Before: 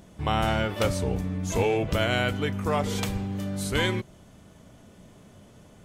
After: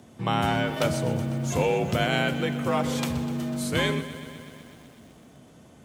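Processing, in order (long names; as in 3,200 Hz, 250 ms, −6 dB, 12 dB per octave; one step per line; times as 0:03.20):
frequency shifter +44 Hz
feedback echo at a low word length 125 ms, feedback 80%, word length 8 bits, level −14.5 dB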